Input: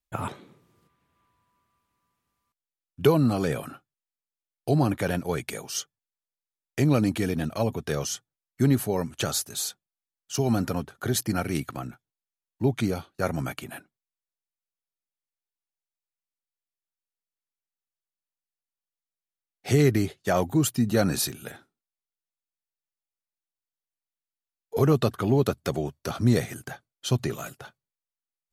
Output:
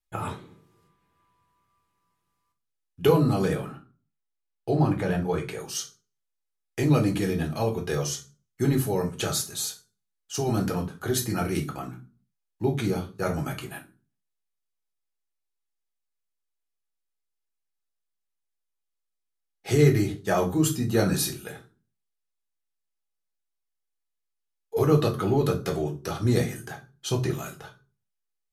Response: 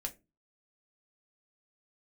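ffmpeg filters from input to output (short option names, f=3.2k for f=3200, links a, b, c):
-filter_complex "[0:a]asettb=1/sr,asplit=3[a][b][c];[a]atrim=end=3.554[d];[b]atrim=start=3.55:end=5.6,asetpts=PTS-STARTPTS,afade=t=in:d=0.004:c=qsin,afade=t=out:st=2.046:d=0.004:c=qsin,lowpass=f=2.8k:p=1[e];[c]atrim=start=5.596[f];[d][e]acrossfade=d=0.004:c1=hsin:c2=qsin[g];[g][f]acrossfade=d=0.004:c1=qsin:c2=hsin[h];[1:a]atrim=start_sample=2205,afade=t=out:st=0.31:d=0.01,atrim=end_sample=14112,asetrate=27783,aresample=44100[i];[h][i]afir=irnorm=-1:irlink=0,volume=-2dB"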